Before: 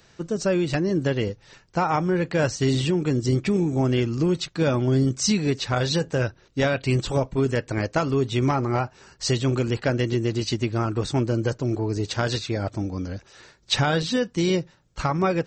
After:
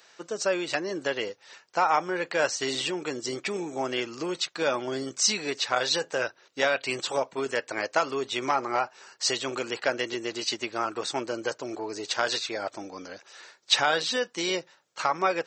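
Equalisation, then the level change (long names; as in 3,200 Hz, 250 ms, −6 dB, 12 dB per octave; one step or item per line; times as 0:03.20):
high-pass filter 600 Hz 12 dB per octave
+1.5 dB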